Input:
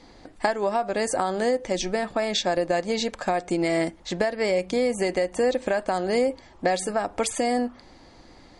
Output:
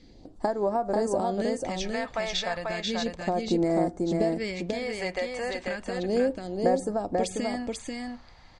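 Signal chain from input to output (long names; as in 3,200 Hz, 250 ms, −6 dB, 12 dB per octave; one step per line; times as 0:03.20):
high-shelf EQ 4,800 Hz +8 dB
all-pass phaser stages 2, 0.34 Hz, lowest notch 250–2,900 Hz
head-to-tape spacing loss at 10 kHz 21 dB
on a send: single-tap delay 490 ms −3 dB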